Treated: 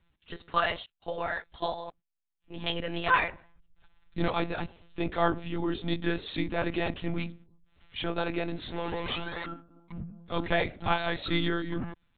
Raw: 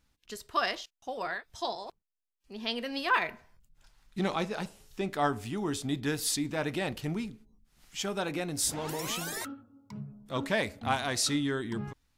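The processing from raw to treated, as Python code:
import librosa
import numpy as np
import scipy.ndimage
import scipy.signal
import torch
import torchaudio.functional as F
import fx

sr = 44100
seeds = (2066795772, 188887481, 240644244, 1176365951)

y = fx.lpc_monotone(x, sr, seeds[0], pitch_hz=170.0, order=16)
y = y * 10.0 ** (2.5 / 20.0)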